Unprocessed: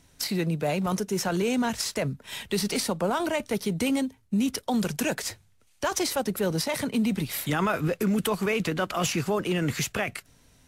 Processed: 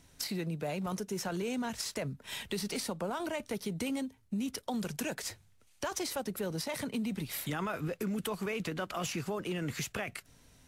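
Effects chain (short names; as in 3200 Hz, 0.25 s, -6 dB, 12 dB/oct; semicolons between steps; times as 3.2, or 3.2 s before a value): compressor 2:1, threshold -36 dBFS, peak gain reduction 8.5 dB; gain -2 dB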